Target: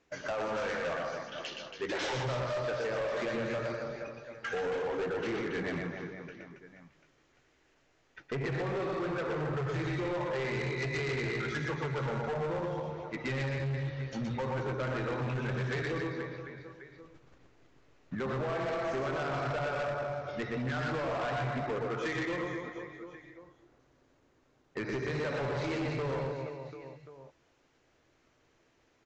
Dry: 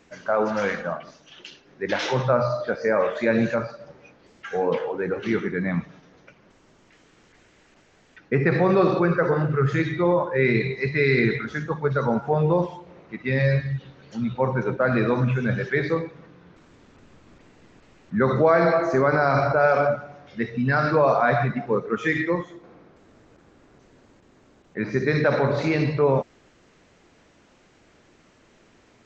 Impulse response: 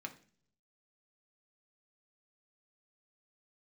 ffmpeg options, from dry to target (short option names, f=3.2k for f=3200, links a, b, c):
-filter_complex "[0:a]agate=range=-14dB:threshold=-48dB:ratio=16:detection=peak,acompressor=threshold=-28dB:ratio=16,equalizer=f=200:w=5.4:g=-12,asplit=2[a][b];[b]adelay=15,volume=-14dB[c];[a][c]amix=inputs=2:normalize=0,aecho=1:1:120|276|478.8|742.4|1085:0.631|0.398|0.251|0.158|0.1,aresample=16000,asoftclip=type=hard:threshold=-30.5dB,aresample=44100"